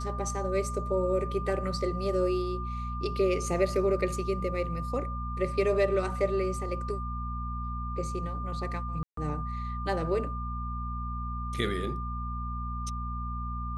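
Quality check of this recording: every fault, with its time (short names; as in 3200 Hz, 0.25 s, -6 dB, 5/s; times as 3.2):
hum 60 Hz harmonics 4 -35 dBFS
tone 1200 Hz -37 dBFS
9.03–9.17 gap 0.143 s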